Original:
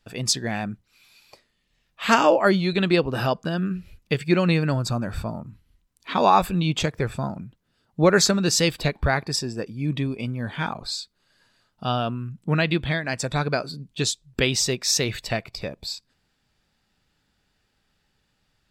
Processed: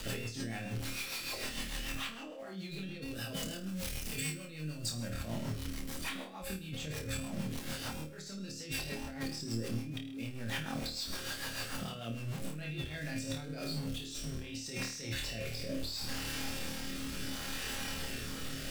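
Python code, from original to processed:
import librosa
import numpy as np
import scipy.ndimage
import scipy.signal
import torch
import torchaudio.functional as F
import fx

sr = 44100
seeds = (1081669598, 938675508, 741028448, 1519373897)

y = x + 0.5 * 10.0 ** (-31.0 / 20.0) * np.sign(x)
y = fx.comb_fb(y, sr, f0_hz=270.0, decay_s=0.36, harmonics='all', damping=0.0, mix_pct=80)
y = fx.dynamic_eq(y, sr, hz=1000.0, q=1.7, threshold_db=-49.0, ratio=4.0, max_db=-6)
y = fx.over_compress(y, sr, threshold_db=-43.0, ratio=-1.0)
y = fx.high_shelf(y, sr, hz=3600.0, db=11.0, at=(3.02, 5.1))
y = fx.room_flutter(y, sr, wall_m=4.5, rt60_s=0.49)
y = fx.rotary_switch(y, sr, hz=6.7, then_hz=0.7, switch_at_s=12.89)
y = fx.band_squash(y, sr, depth_pct=40)
y = y * 10.0 ** (1.0 / 20.0)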